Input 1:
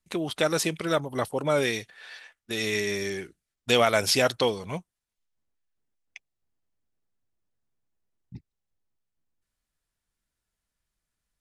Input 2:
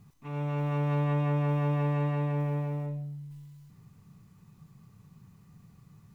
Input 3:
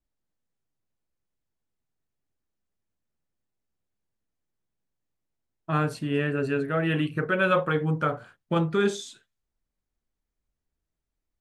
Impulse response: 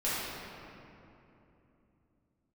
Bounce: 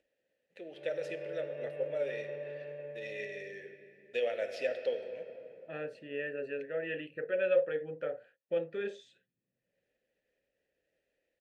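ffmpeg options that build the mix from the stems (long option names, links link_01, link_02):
-filter_complex "[0:a]adelay=450,volume=-1dB,asplit=2[link_01][link_02];[link_02]volume=-18.5dB[link_03];[1:a]aecho=1:1:5:0.95,adelay=500,volume=-3.5dB[link_04];[2:a]acompressor=mode=upward:threshold=-41dB:ratio=2.5,volume=0.5dB,asplit=2[link_05][link_06];[link_06]apad=whole_len=522808[link_07];[link_01][link_07]sidechaingate=range=-33dB:threshold=-58dB:ratio=16:detection=peak[link_08];[3:a]atrim=start_sample=2205[link_09];[link_03][link_09]afir=irnorm=-1:irlink=0[link_10];[link_08][link_04][link_05][link_10]amix=inputs=4:normalize=0,asplit=3[link_11][link_12][link_13];[link_11]bandpass=frequency=530:width_type=q:width=8,volume=0dB[link_14];[link_12]bandpass=frequency=1840:width_type=q:width=8,volume=-6dB[link_15];[link_13]bandpass=frequency=2480:width_type=q:width=8,volume=-9dB[link_16];[link_14][link_15][link_16]amix=inputs=3:normalize=0"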